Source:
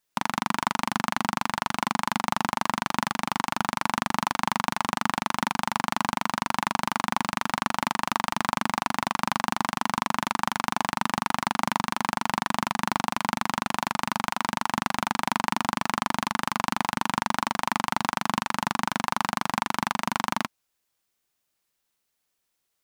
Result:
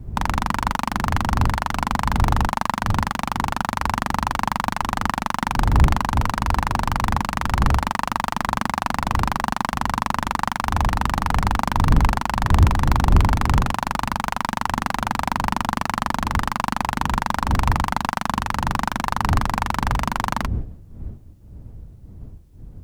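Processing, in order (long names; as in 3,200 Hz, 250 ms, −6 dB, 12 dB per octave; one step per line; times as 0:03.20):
wind on the microphone 84 Hz −27 dBFS
harmonic generator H 5 −16 dB, 8 −26 dB, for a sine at −2 dBFS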